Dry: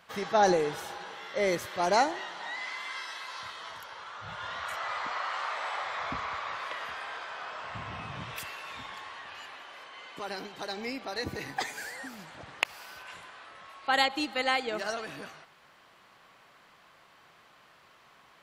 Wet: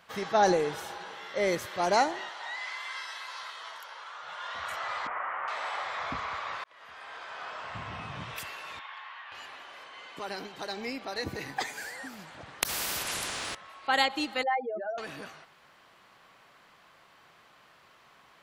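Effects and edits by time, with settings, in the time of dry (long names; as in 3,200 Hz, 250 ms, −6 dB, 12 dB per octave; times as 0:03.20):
0:02.29–0:04.55: high-pass filter 530 Hz
0:05.07–0:05.48: inverse Chebyshev low-pass filter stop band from 4,300 Hz
0:06.64–0:07.46: fade in
0:08.79–0:09.32: flat-topped band-pass 1,700 Hz, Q 0.68
0:12.62–0:13.55: every bin compressed towards the loudest bin 4 to 1
0:14.43–0:14.98: expanding power law on the bin magnitudes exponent 3.7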